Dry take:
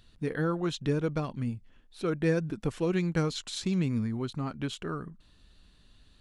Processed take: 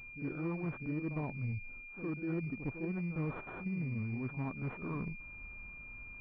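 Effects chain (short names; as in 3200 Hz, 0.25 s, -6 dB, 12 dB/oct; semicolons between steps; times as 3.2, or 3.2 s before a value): reverse; compressor 5:1, threshold -42 dBFS, peak gain reduction 18 dB; reverse; reverse echo 59 ms -9.5 dB; formant shift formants -3 st; pulse-width modulation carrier 2400 Hz; gain +5.5 dB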